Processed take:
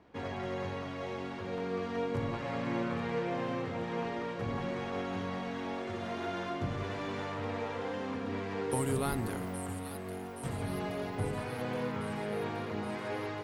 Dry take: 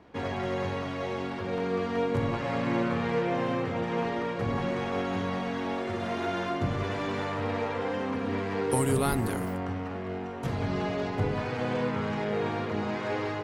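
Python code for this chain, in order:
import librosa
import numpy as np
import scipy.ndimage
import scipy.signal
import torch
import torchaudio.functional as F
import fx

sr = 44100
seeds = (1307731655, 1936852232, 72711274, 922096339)

y = fx.echo_wet_highpass(x, sr, ms=823, feedback_pct=64, hz=3500.0, wet_db=-6.0)
y = y * librosa.db_to_amplitude(-6.0)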